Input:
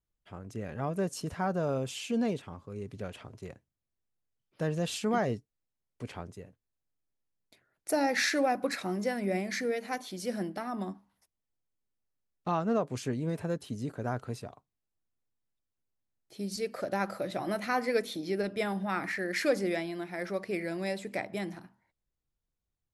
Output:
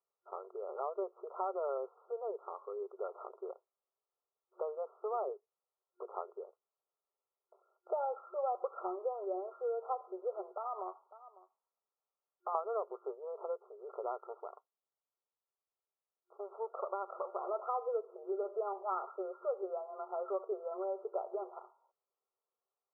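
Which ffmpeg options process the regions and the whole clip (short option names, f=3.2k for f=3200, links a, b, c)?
-filter_complex "[0:a]asettb=1/sr,asplit=3[a][b][c];[a]atrim=end=10.514[d];[b]atrim=start=10.51:end=12.55,asetpts=PTS-STARTPTS,afade=t=in:d=0.004:c=qsin,afade=t=out:st=2.036:d=0.004:c=qsin,highpass=500,aecho=1:1:549:0.075,atrim=end_sample=89964,acompressor=threshold=-40dB:ratio=4:attack=3.2:release=140:knee=1:detection=peak[e];[c]atrim=start=12.546[f];[d][e]acrossfade=d=0.004:c1=hsin:c2=qsin[g];[g][f]acrossfade=d=0.004:c1=qsin:c2=hsin,asettb=1/sr,asplit=3[h][i][j];[h]atrim=end=14.184[k];[i]atrim=start=14.18:end=17.46,asetpts=PTS-STARTPTS,afade=t=in:d=0.004:c=qsin,afade=t=out:st=3.276:d=0.004:c=qsin,highpass=250,aeval=exprs='max(val(0),0)':c=same[l];[j]atrim=start=17.456[m];[k][l]acrossfade=d=0.004:c1=hsin:c2=qsin[n];[n][m]acrossfade=d=0.004:c1=qsin:c2=hsin,acompressor=threshold=-36dB:ratio=6,aemphasis=mode=production:type=bsi,afftfilt=real='re*between(b*sr/4096,360,1400)':imag='im*between(b*sr/4096,360,1400)':win_size=4096:overlap=0.75,volume=6dB"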